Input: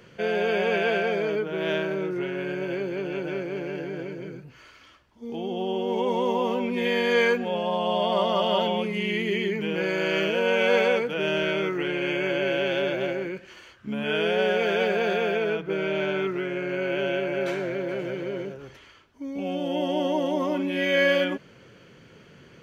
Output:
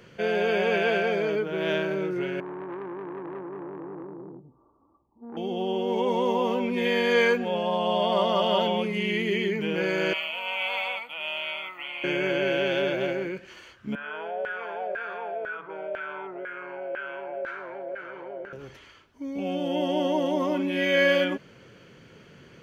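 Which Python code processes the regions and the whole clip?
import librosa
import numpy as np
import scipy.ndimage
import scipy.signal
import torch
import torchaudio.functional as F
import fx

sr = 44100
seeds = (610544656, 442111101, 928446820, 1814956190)

y = fx.chain(x, sr, fx.cheby_ripple(hz=1200.0, ripple_db=9),
    fx.transformer_sat(knee_hz=900.0), at=(2.4, 5.37))
y = fx.chain(y, sr, fx.highpass(hz=800.0, slope=12),
    fx.fixed_phaser(hz=1600.0, stages=6), at=(10.13, 12.04))
y = fx.chain(y, sr, fx.filter_lfo_bandpass(shape='saw_down', hz=2.0, low_hz=580.0, high_hz=1600.0, q=6.1),
    fx.env_flatten(amount_pct=50), at=(13.95, 18.53))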